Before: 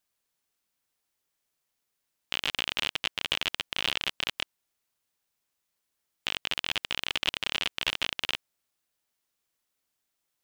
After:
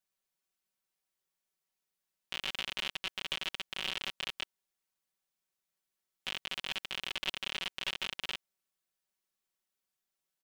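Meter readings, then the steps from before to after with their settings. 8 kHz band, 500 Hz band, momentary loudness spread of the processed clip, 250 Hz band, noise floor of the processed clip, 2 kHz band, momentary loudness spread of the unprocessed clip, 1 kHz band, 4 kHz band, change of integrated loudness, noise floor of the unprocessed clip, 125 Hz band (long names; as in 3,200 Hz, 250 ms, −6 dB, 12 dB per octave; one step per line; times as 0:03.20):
−7.0 dB, −7.0 dB, 5 LU, −7.0 dB, below −85 dBFS, −7.0 dB, 5 LU, −7.0 dB, −7.0 dB, −7.0 dB, −82 dBFS, −8.0 dB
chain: comb filter 5.3 ms, depth 78%
level −9 dB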